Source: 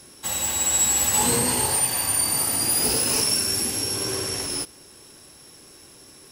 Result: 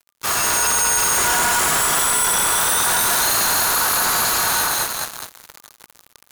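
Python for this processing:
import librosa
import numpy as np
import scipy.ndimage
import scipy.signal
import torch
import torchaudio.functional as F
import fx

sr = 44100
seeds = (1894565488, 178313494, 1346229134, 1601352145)

p1 = fx.lower_of_two(x, sr, delay_ms=3.9)
p2 = fx.echo_split(p1, sr, split_hz=630.0, low_ms=83, high_ms=212, feedback_pct=52, wet_db=-3)
p3 = fx.sample_hold(p2, sr, seeds[0], rate_hz=1000.0, jitter_pct=0)
p4 = p2 + F.gain(torch.from_numpy(p3), -4.5).numpy()
p5 = fx.dmg_buzz(p4, sr, base_hz=120.0, harmonics=3, level_db=-47.0, tilt_db=-2, odd_only=False)
p6 = fx.fuzz(p5, sr, gain_db=35.0, gate_db=-36.0)
y = p6 * np.sin(2.0 * np.pi * 1200.0 * np.arange(len(p6)) / sr)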